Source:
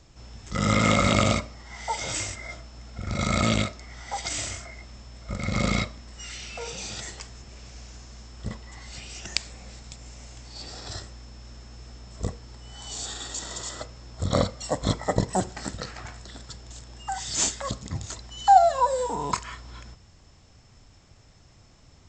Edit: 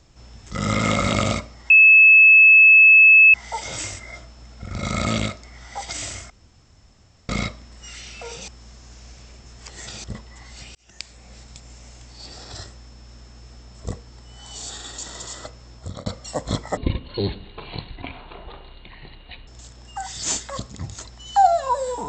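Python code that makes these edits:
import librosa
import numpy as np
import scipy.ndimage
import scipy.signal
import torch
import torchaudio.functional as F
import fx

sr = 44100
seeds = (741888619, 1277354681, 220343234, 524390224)

y = fx.edit(x, sr, fx.insert_tone(at_s=1.7, length_s=1.64, hz=2600.0, db=-7.0),
    fx.room_tone_fill(start_s=4.66, length_s=0.99),
    fx.reverse_span(start_s=6.84, length_s=1.56),
    fx.fade_in_span(start_s=9.11, length_s=0.65),
    fx.fade_out_span(start_s=14.1, length_s=0.32),
    fx.speed_span(start_s=15.13, length_s=1.46, speed=0.54), tone=tone)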